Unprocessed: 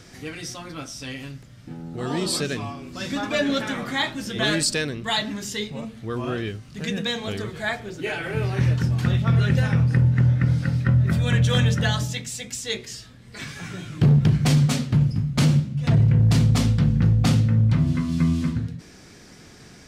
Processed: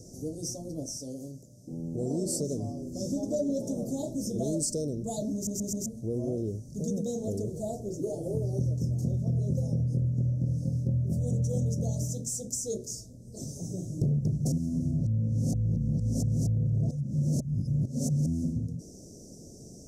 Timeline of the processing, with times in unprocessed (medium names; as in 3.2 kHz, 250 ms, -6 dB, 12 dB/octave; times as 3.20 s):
0.97–1.73 s: high-pass 270 Hz 6 dB/octave
5.34 s: stutter in place 0.13 s, 4 plays
14.52–18.26 s: reverse
whole clip: Chebyshev band-stop 610–5900 Hz, order 4; peaking EQ 2.1 kHz +13 dB 1.6 oct; compression 3:1, threshold -28 dBFS